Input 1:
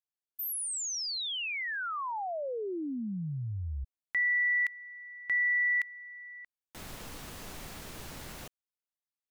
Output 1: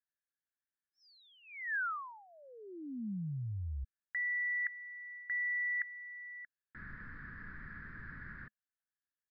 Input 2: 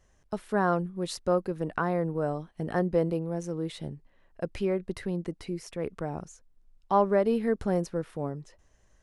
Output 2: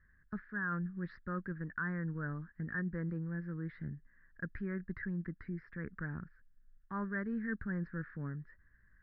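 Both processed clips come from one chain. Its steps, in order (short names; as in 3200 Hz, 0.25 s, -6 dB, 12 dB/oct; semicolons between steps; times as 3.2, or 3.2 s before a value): EQ curve 210 Hz 0 dB, 740 Hz -23 dB, 1700 Hz +13 dB, 2800 Hz -26 dB; reverse; compressor 6:1, threshold -31 dBFS; reverse; downsampling 11025 Hz; gain -3 dB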